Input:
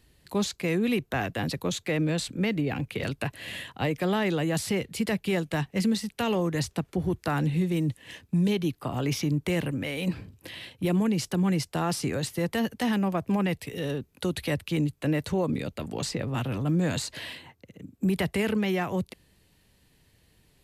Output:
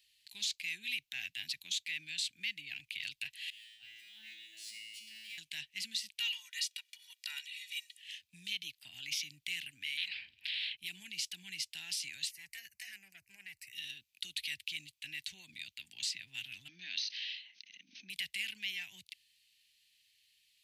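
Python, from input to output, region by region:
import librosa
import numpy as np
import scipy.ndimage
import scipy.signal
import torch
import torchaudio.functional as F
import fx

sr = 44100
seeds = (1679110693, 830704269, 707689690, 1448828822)

y = fx.chain(x, sr, fx.law_mismatch(coded='mu'),
    fx.comb_fb(f0_hz=110.0, decay_s=0.81, harmonics='all', damping=0.0, mix_pct=100),
    fx.sustainer(db_per_s=22.0), at=(3.5, 5.38))
y = fx.chain(y, sr, fx.steep_highpass(hz=880.0, slope=96),
    fx.comb(ms=2.1, depth=0.88), at=(6.2, 8.01))
y = fx.chain(y, sr, fx.air_absorb(metres=430.0),
    fx.spectral_comp(ratio=4.0), at=(9.97, 10.77))
y = fx.chain(y, sr, fx.low_shelf(hz=130.0, db=5.0),
    fx.fixed_phaser(hz=920.0, stages=6),
    fx.transformer_sat(knee_hz=650.0), at=(12.31, 13.73))
y = fx.chain(y, sr, fx.brickwall_bandpass(low_hz=170.0, high_hz=6400.0),
    fx.pre_swell(db_per_s=58.0), at=(16.68, 18.1))
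y = scipy.signal.sosfilt(scipy.signal.cheby2(4, 40, 1300.0, 'highpass', fs=sr, output='sos'), y)
y = fx.peak_eq(y, sr, hz=12000.0, db=-12.5, octaves=2.0)
y = y * librosa.db_to_amplitude(5.0)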